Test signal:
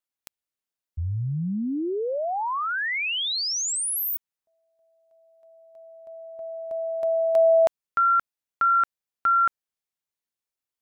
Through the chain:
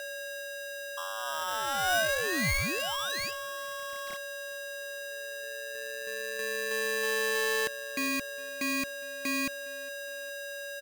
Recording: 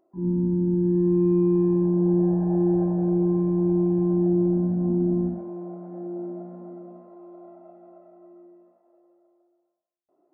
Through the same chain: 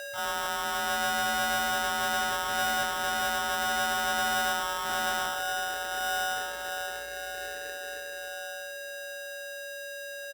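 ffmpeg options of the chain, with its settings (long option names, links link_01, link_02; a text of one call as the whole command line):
ffmpeg -i in.wav -filter_complex "[0:a]asplit=2[link_01][link_02];[link_02]acompressor=threshold=-35dB:ratio=6,volume=-3dB[link_03];[link_01][link_03]amix=inputs=2:normalize=0,aeval=exprs='(tanh(25.1*val(0)+0.4)-tanh(0.4))/25.1':channel_layout=same,aeval=exprs='val(0)+0.0158*sin(2*PI*530*n/s)':channel_layout=same,equalizer=frequency=100:width_type=o:width=0.67:gain=-10,equalizer=frequency=400:width_type=o:width=0.67:gain=9,equalizer=frequency=1000:width_type=o:width=0.67:gain=7,aresample=8000,aresample=44100,asplit=2[link_04][link_05];[link_05]adelay=410,lowpass=frequency=990:poles=1,volume=-20.5dB,asplit=2[link_06][link_07];[link_07]adelay=410,lowpass=frequency=990:poles=1,volume=0.54,asplit=2[link_08][link_09];[link_09]adelay=410,lowpass=frequency=990:poles=1,volume=0.54,asplit=2[link_10][link_11];[link_11]adelay=410,lowpass=frequency=990:poles=1,volume=0.54[link_12];[link_06][link_08][link_10][link_12]amix=inputs=4:normalize=0[link_13];[link_04][link_13]amix=inputs=2:normalize=0,aeval=exprs='val(0)*sgn(sin(2*PI*1100*n/s))':channel_layout=same,volume=-4.5dB" out.wav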